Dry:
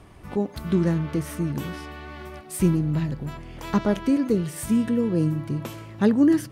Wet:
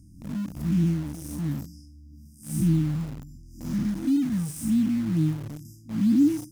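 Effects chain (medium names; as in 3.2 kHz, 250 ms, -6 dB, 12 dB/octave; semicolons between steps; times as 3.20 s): spectral blur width 199 ms; brick-wall FIR band-stop 330–4800 Hz; reverb removal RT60 1.2 s; in parallel at -8 dB: word length cut 6-bit, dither none; on the sum: trim +1 dB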